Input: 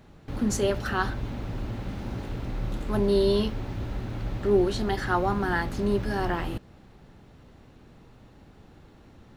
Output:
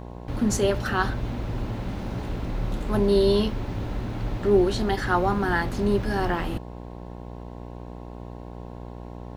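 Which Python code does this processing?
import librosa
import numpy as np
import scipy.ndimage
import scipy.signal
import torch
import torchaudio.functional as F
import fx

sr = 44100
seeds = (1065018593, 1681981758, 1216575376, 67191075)

y = fx.dmg_buzz(x, sr, base_hz=60.0, harmonics=18, level_db=-41.0, tilt_db=-4, odd_only=False)
y = y * 10.0 ** (2.5 / 20.0)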